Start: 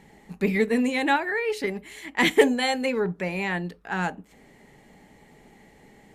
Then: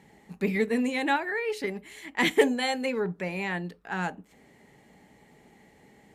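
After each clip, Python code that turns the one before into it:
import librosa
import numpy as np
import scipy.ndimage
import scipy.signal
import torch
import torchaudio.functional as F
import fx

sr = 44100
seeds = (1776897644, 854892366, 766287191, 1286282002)

y = scipy.signal.sosfilt(scipy.signal.butter(2, 57.0, 'highpass', fs=sr, output='sos'), x)
y = F.gain(torch.from_numpy(y), -3.5).numpy()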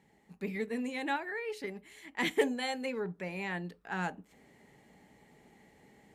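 y = fx.rider(x, sr, range_db=10, speed_s=2.0)
y = F.gain(torch.from_numpy(y), -8.5).numpy()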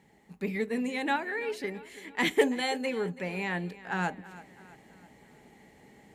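y = fx.echo_feedback(x, sr, ms=331, feedback_pct=48, wet_db=-17.5)
y = F.gain(torch.from_numpy(y), 4.5).numpy()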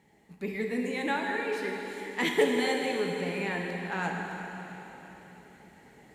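y = fx.rev_plate(x, sr, seeds[0], rt60_s=3.7, hf_ratio=1.0, predelay_ms=0, drr_db=0.5)
y = F.gain(torch.from_numpy(y), -2.0).numpy()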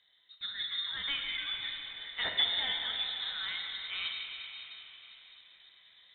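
y = fx.freq_invert(x, sr, carrier_hz=3900)
y = F.gain(torch.from_numpy(y), -5.5).numpy()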